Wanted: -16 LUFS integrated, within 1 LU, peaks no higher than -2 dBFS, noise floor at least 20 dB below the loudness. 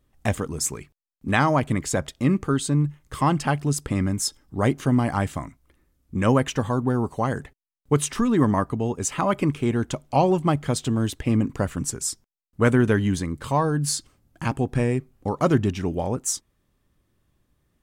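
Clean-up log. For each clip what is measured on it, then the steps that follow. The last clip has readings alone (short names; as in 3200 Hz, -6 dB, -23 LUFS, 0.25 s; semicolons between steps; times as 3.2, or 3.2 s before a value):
loudness -24.0 LUFS; peak -5.5 dBFS; loudness target -16.0 LUFS
-> gain +8 dB; limiter -2 dBFS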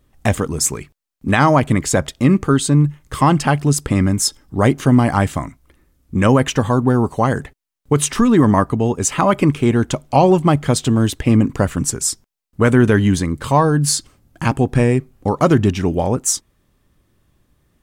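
loudness -16.5 LUFS; peak -2.0 dBFS; noise floor -65 dBFS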